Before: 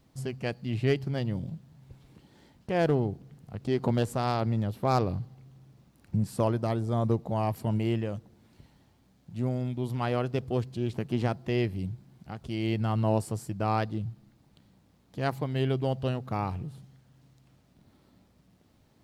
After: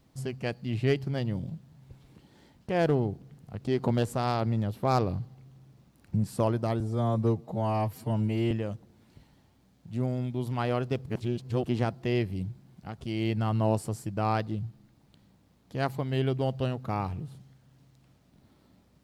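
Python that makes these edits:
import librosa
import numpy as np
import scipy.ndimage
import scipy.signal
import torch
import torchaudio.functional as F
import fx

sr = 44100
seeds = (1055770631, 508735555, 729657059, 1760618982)

y = fx.edit(x, sr, fx.stretch_span(start_s=6.8, length_s=1.14, factor=1.5),
    fx.reverse_span(start_s=10.49, length_s=0.59), tone=tone)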